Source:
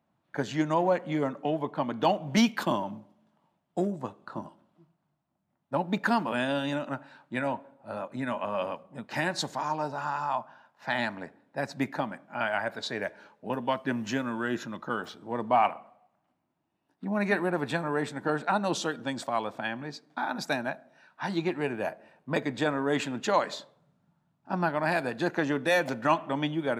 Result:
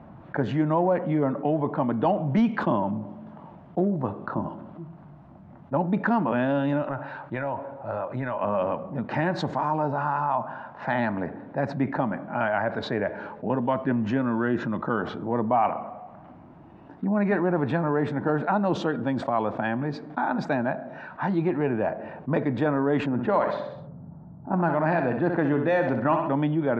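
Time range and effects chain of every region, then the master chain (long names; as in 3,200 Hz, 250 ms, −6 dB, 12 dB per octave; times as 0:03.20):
0:06.82–0:08.41: parametric band 230 Hz −11.5 dB 0.9 octaves + downward compressor 3 to 1, threshold −36 dBFS
0:23.06–0:26.35: low-pass that shuts in the quiet parts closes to 680 Hz, open at −20.5 dBFS + repeating echo 64 ms, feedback 39%, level −9.5 dB
whole clip: Bessel low-pass filter 1,200 Hz, order 2; low-shelf EQ 92 Hz +9.5 dB; envelope flattener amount 50%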